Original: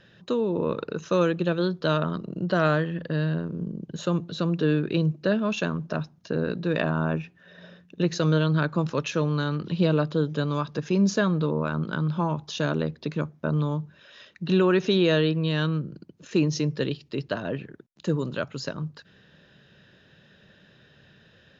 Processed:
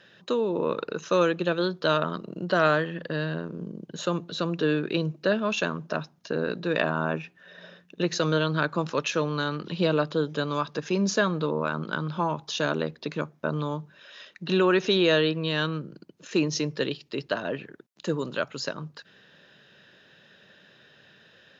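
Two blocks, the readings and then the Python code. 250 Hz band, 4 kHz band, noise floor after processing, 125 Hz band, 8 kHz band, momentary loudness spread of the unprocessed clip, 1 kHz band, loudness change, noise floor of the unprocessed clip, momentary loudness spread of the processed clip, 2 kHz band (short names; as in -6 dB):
-3.5 dB, +3.0 dB, -59 dBFS, -6.0 dB, n/a, 10 LU, +2.5 dB, -1.0 dB, -58 dBFS, 11 LU, +2.5 dB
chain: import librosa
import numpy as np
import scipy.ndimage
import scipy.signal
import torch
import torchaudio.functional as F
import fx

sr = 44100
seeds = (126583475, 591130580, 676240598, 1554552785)

y = fx.highpass(x, sr, hz=430.0, slope=6)
y = y * librosa.db_to_amplitude(3.0)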